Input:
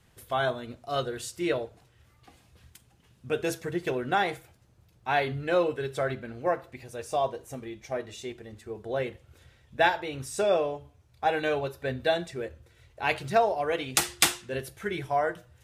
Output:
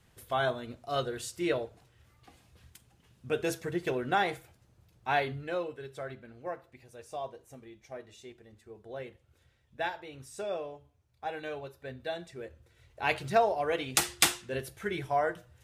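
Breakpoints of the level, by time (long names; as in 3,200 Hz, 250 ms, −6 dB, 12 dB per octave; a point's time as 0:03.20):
0:05.14 −2 dB
0:05.68 −11 dB
0:12.08 −11 dB
0:13.04 −2 dB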